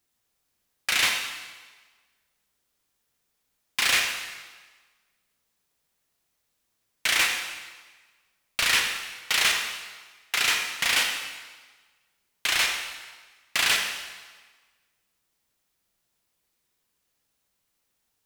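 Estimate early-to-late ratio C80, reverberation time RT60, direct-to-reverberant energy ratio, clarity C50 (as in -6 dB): 6.0 dB, 1.4 s, 2.5 dB, 4.0 dB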